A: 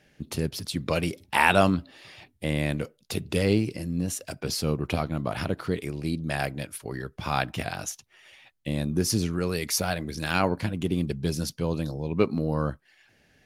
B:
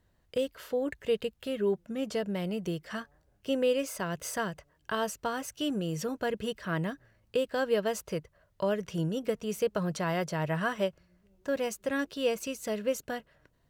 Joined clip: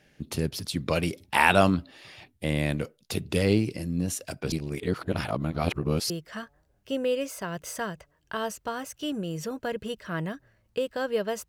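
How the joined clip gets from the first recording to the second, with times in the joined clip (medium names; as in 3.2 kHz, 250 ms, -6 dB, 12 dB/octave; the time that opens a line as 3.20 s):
A
4.52–6.10 s: reverse
6.10 s: go over to B from 2.68 s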